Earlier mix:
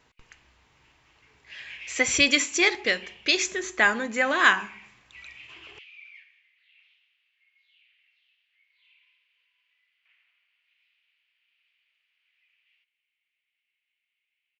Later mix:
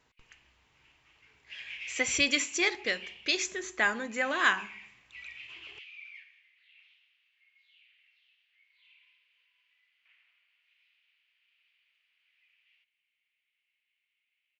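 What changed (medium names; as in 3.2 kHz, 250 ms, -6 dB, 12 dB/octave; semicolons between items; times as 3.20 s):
speech -6.5 dB; master: add treble shelf 9 kHz +3.5 dB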